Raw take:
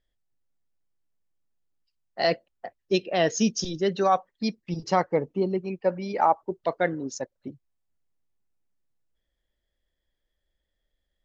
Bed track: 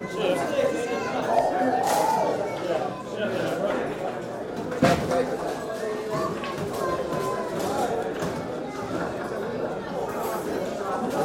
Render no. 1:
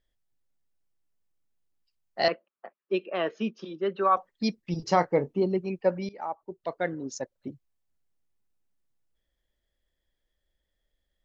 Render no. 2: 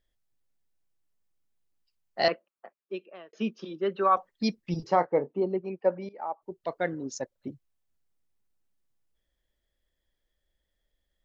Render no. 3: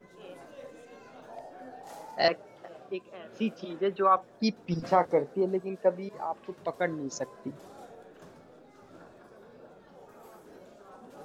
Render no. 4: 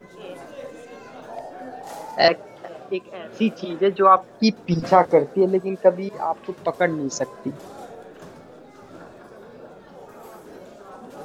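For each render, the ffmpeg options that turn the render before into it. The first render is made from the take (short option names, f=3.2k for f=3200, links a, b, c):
-filter_complex "[0:a]asettb=1/sr,asplit=3[a][b][c];[a]atrim=end=2.284[d];[b]atrim=start=2.28:end=4.17,asetpts=PTS-STARTPTS,afade=t=in:d=0.004:c=qsin,afade=t=out:st=1.886:d=0.004:c=qsin,highpass=f=240:w=0.5412,highpass=f=240:w=1.3066,equalizer=f=280:t=q:w=4:g=-10,equalizer=f=480:t=q:w=4:g=-5,equalizer=f=720:t=q:w=4:g=-9,equalizer=f=1.2k:t=q:w=4:g=7,equalizer=f=1.9k:t=q:w=4:g=-8,lowpass=f=2.6k:w=0.5412,lowpass=f=2.6k:w=1.3066[e];[c]atrim=start=4.166[f];[d][e]acrossfade=d=0.004:c1=hsin:c2=qsin[g];[g][f]acrossfade=d=0.004:c1=qsin:c2=hsin,asettb=1/sr,asplit=3[h][i][j];[h]atrim=end=4.844[k];[i]atrim=start=4.84:end=5.44,asetpts=PTS-STARTPTS,afade=t=in:d=0.004:c=qsin,afade=t=out:st=0.596:d=0.004:c=qsin,asplit=2[l][m];[m]adelay=29,volume=-13dB[n];[l][n]amix=inputs=2:normalize=0,atrim=end_sample=26460[o];[j]atrim=start=5.436[p];[k][o]acrossfade=d=0.004:c1=hsin:c2=qsin[q];[q][p]acrossfade=d=0.004:c1=qsin:c2=hsin,asplit=2[r][s];[r]atrim=end=6.09,asetpts=PTS-STARTPTS,afade=t=out:st=6.086:d=0.004:c=hsin:silence=0.1[t];[s]atrim=start=6.09,asetpts=PTS-STARTPTS,afade=t=in:d=1.4:silence=0.1[u];[t][u]concat=n=2:v=0:a=1"
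-filter_complex "[0:a]asettb=1/sr,asplit=3[a][b][c];[a]atrim=end=4.874[d];[b]atrim=start=4.87:end=6.42,asetpts=PTS-STARTPTS,afade=t=in:d=0.004:c=qsin,afade=t=out:st=1.546:d=0.004:c=qsin,bandpass=f=670:t=q:w=0.57[e];[c]atrim=start=6.416[f];[d][e]acrossfade=d=0.004:c1=hsin:c2=qsin[g];[g][f]acrossfade=d=0.004:c1=qsin:c2=hsin,asplit=2[h][i];[h]atrim=end=3.33,asetpts=PTS-STARTPTS,afade=t=out:st=2.3:d=1.03[j];[i]atrim=start=3.33,asetpts=PTS-STARTPTS,afade=t=in:d=0.004:c=hsin[k];[j][k]concat=n=2:v=0:a=1"
-filter_complex "[1:a]volume=-23dB[a];[0:a][a]amix=inputs=2:normalize=0"
-af "volume=9.5dB,alimiter=limit=-2dB:level=0:latency=1"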